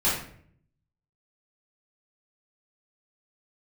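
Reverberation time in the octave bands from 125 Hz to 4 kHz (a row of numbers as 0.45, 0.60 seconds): 1.0, 0.85, 0.65, 0.50, 0.55, 0.40 seconds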